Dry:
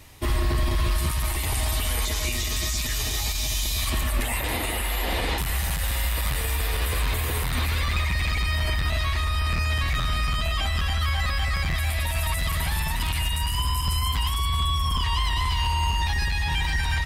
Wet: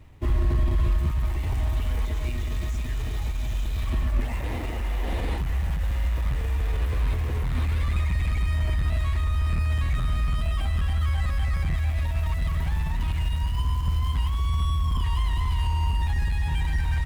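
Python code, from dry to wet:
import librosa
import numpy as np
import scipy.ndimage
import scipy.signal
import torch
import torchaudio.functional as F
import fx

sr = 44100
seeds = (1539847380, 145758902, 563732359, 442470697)

y = scipy.signal.medfilt(x, 9)
y = fx.low_shelf(y, sr, hz=390.0, db=10.0)
y = y * 10.0 ** (-8.0 / 20.0)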